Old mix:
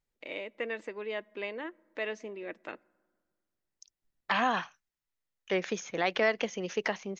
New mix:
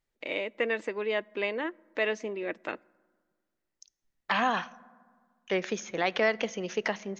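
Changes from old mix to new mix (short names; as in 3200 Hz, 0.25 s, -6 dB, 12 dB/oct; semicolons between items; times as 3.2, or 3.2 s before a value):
first voice +6.5 dB; second voice: send on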